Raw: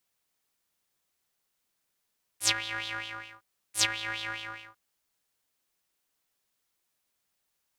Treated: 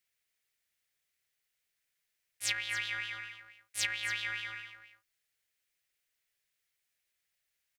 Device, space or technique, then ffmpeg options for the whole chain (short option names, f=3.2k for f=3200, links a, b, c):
soft clipper into limiter: -af "equalizer=f=250:t=o:w=1:g=-10,equalizer=f=1k:t=o:w=1:g=-10,equalizer=f=2k:t=o:w=1:g=9,asoftclip=type=tanh:threshold=-7dB,alimiter=limit=-12dB:level=0:latency=1:release=221,aecho=1:1:281:0.266,volume=-4.5dB"